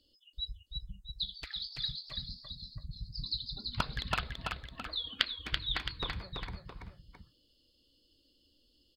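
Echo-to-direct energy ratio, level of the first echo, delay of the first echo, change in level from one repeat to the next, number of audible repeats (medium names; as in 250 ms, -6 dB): -3.5 dB, -4.5 dB, 333 ms, -5.5 dB, 2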